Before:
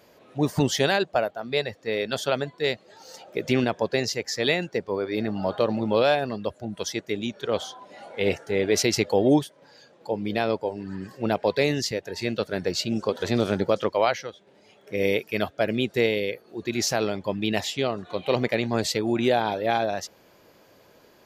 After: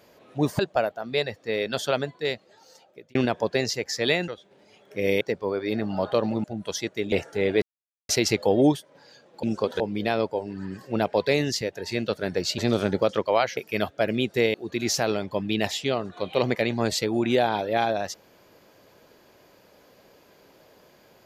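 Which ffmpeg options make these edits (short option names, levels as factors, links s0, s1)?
-filter_complex "[0:a]asplit=13[s0][s1][s2][s3][s4][s5][s6][s7][s8][s9][s10][s11][s12];[s0]atrim=end=0.592[s13];[s1]atrim=start=0.978:end=3.54,asetpts=PTS-STARTPTS,afade=t=out:st=1.422:d=1.14[s14];[s2]atrim=start=3.54:end=4.672,asetpts=PTS-STARTPTS,afade=t=in:d=0.004:c=hsin[s15];[s3]atrim=start=14.238:end=15.172[s16];[s4]atrim=start=4.668:end=5.902[s17];[s5]atrim=start=6.558:end=7.242[s18];[s6]atrim=start=8.258:end=8.76,asetpts=PTS-STARTPTS,afade=t=out:st=0.498:d=0.004:c=hsin,apad=pad_dur=0.47[s19];[s7]atrim=start=8.76:end=10.102,asetpts=PTS-STARTPTS,afade=t=in:d=0.004:c=hsin[s20];[s8]atrim=start=12.878:end=13.252[s21];[s9]atrim=start=10.098:end=12.882[s22];[s10]atrim=start=13.248:end=14.242[s23];[s11]atrim=start=15.168:end=16.142[s24];[s12]atrim=start=16.468[s25];[s14][s15]concat=n=2:v=0:a=1[s26];[s13][s26]acrossfade=d=0.004:c1=hsin:c2=hsin[s27];[s27][s16]acrossfade=d=0.004:c1=hsin:c2=hsin[s28];[s28][s17]acrossfade=d=0.004:c1=hsin:c2=hsin[s29];[s29][s18]acrossfade=d=0.004:c1=hsin:c2=hsin[s30];[s19][s20]concat=n=2:v=0:a=1[s31];[s30][s31]acrossfade=d=0.004:c1=hsin:c2=hsin[s32];[s32][s21]acrossfade=d=0.004:c1=hsin:c2=hsin[s33];[s33][s22]acrossfade=d=0.004:c1=hsin:c2=hsin[s34];[s34][s23]acrossfade=d=0.004:c1=hsin:c2=hsin[s35];[s35][s24]acrossfade=d=0.004:c1=hsin:c2=hsin[s36];[s36][s25]acrossfade=d=0.004:c1=hsin:c2=hsin"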